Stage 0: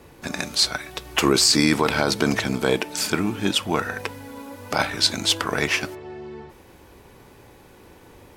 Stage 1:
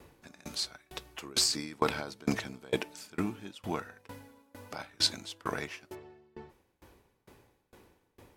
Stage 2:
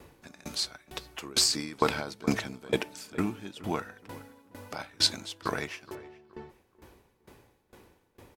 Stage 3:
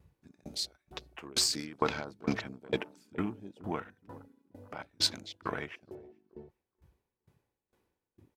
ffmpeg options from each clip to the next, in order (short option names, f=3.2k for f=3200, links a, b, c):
-af "aeval=exprs='val(0)*pow(10,-28*if(lt(mod(2.2*n/s,1),2*abs(2.2)/1000),1-mod(2.2*n/s,1)/(2*abs(2.2)/1000),(mod(2.2*n/s,1)-2*abs(2.2)/1000)/(1-2*abs(2.2)/1000))/20)':c=same,volume=-5dB"
-filter_complex "[0:a]asplit=2[a][b];[b]adelay=420,lowpass=f=2.2k:p=1,volume=-18.5dB,asplit=2[c][d];[d]adelay=420,lowpass=f=2.2k:p=1,volume=0.3,asplit=2[e][f];[f]adelay=420,lowpass=f=2.2k:p=1,volume=0.3[g];[a][c][e][g]amix=inputs=4:normalize=0,volume=3dB"
-af "afwtdn=0.00708,volume=-4dB"